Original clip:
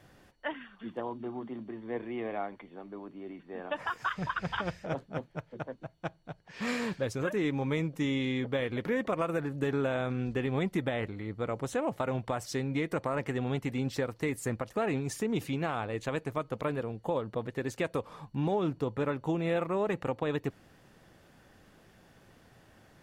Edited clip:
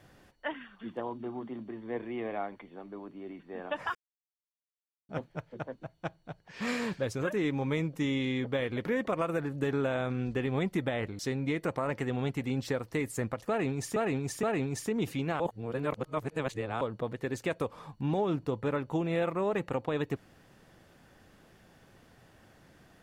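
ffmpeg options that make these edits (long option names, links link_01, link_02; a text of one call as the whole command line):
ffmpeg -i in.wav -filter_complex "[0:a]asplit=8[link_01][link_02][link_03][link_04][link_05][link_06][link_07][link_08];[link_01]atrim=end=3.95,asetpts=PTS-STARTPTS,afade=type=out:start_time=3.946:duration=0.004:curve=hsin[link_09];[link_02]atrim=start=3.95:end=5.09,asetpts=PTS-STARTPTS,volume=0[link_10];[link_03]atrim=start=5.09:end=11.192,asetpts=PTS-STARTPTS,afade=type=in:duration=0.004:curve=hsin[link_11];[link_04]atrim=start=12.468:end=15.242[link_12];[link_05]atrim=start=14.768:end=15.242[link_13];[link_06]atrim=start=14.768:end=15.742[link_14];[link_07]atrim=start=15.738:end=17.152,asetpts=PTS-STARTPTS,areverse[link_15];[link_08]atrim=start=17.148[link_16];[link_09][link_10][link_11]concat=n=3:v=0:a=1[link_17];[link_17][link_12]acrossfade=duration=0.004:curve1=hsin:curve2=hsin[link_18];[link_18][link_13]acrossfade=duration=0.004:curve1=hsin:curve2=hsin[link_19];[link_19][link_14]acrossfade=duration=0.004:curve1=hsin:curve2=hsin[link_20];[link_20][link_15]acrossfade=duration=0.004:curve1=hsin:curve2=hsin[link_21];[link_21][link_16]acrossfade=duration=0.004:curve1=hsin:curve2=hsin" out.wav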